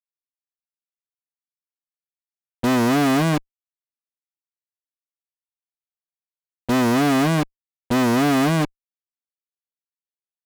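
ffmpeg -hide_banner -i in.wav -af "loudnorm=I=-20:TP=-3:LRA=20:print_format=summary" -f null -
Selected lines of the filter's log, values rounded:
Input Integrated:    -19.7 LUFS
Input True Peak:     -10.4 dBTP
Input LRA:             6.1 LU
Input Threshold:     -29.9 LUFS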